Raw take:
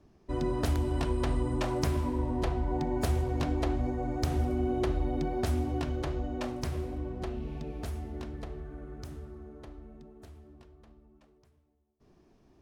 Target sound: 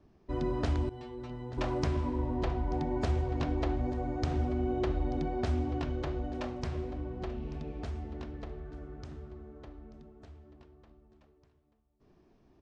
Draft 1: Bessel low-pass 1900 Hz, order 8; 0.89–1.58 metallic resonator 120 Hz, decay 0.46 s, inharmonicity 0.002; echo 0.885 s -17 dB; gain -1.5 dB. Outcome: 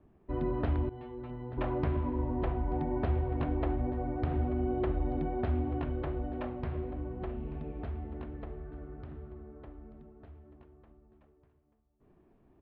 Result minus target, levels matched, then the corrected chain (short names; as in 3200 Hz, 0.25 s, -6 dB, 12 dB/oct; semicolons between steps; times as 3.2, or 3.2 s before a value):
4000 Hz band -10.0 dB
Bessel low-pass 4700 Hz, order 8; 0.89–1.58 metallic resonator 120 Hz, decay 0.46 s, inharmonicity 0.002; echo 0.885 s -17 dB; gain -1.5 dB